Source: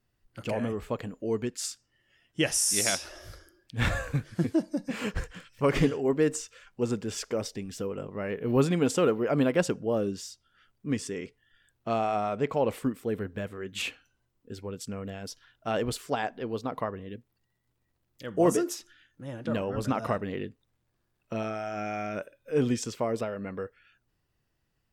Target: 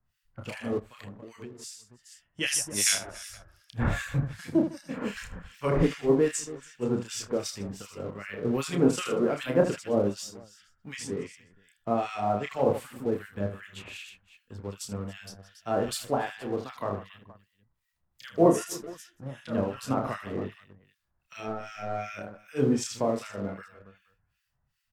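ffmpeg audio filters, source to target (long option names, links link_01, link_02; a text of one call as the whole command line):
ffmpeg -i in.wav -filter_complex "[0:a]asettb=1/sr,asplit=3[link_01][link_02][link_03];[link_01]atrim=end=21.474[link_04];[link_02]atrim=start=21.47:end=21.95,asetpts=PTS-STARTPTS,afade=type=in:duration=0.004:curve=qsin,afade=type=out:start_time=0.476:duration=0.004:curve=qsin,aeval=exprs='if(lt(val(0),0),0.708*val(0),val(0))':channel_layout=same[link_05];[link_03]atrim=start=21.946[link_06];[link_04][link_05]acrossfade=duration=0.004:curve1=hsin:curve2=qsin[link_07];[link_07][link_06]acrossfade=duration=0.004:curve1=qsin:curve2=hsin,aecho=1:1:30|78|154.8|277.7|474.3:0.631|0.398|0.251|0.158|0.1,acrossover=split=1400[link_08][link_09];[link_08]aeval=exprs='val(0)*(1-1/2+1/2*cos(2*PI*2.6*n/s))':channel_layout=same[link_10];[link_09]aeval=exprs='val(0)*(1-1/2-1/2*cos(2*PI*2.6*n/s))':channel_layout=same[link_11];[link_10][link_11]amix=inputs=2:normalize=0,acrossover=split=200|630|2700[link_12][link_13][link_14][link_15];[link_13]aeval=exprs='sgn(val(0))*max(abs(val(0))-0.00299,0)':channel_layout=same[link_16];[link_12][link_16][link_14][link_15]amix=inputs=4:normalize=0,asplit=3[link_17][link_18][link_19];[link_17]afade=type=out:start_time=0.78:duration=0.02[link_20];[link_18]acompressor=threshold=-42dB:ratio=12,afade=type=in:start_time=0.78:duration=0.02,afade=type=out:start_time=2.4:duration=0.02[link_21];[link_19]afade=type=in:start_time=2.4:duration=0.02[link_22];[link_20][link_21][link_22]amix=inputs=3:normalize=0,volume=2.5dB" out.wav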